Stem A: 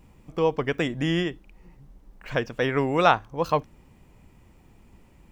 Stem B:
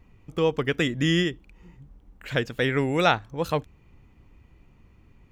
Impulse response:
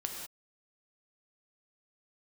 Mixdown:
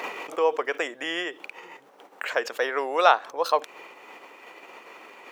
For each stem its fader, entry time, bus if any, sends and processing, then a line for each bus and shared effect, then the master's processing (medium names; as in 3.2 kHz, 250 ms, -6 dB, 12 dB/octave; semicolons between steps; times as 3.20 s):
+1.0 dB, 0.00 s, no send, none
-1.0 dB, 0.00 s, no send, treble shelf 5.1 kHz -7 dB; level flattener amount 100%; auto duck -13 dB, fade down 0.75 s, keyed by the first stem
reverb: none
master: high-pass 480 Hz 24 dB/octave